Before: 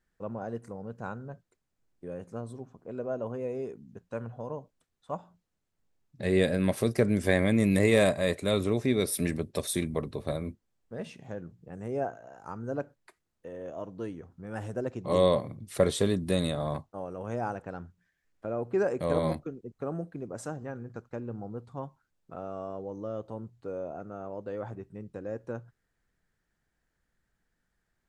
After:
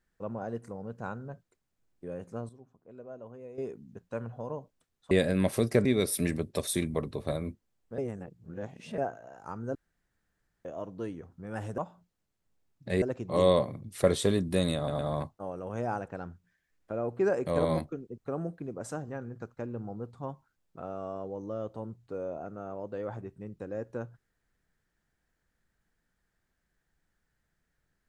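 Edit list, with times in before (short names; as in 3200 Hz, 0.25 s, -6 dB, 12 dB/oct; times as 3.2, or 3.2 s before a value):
2.49–3.58 gain -11.5 dB
5.11–6.35 move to 14.78
7.09–8.85 cut
10.98–11.98 reverse
12.75–13.65 room tone
16.53 stutter 0.11 s, 3 plays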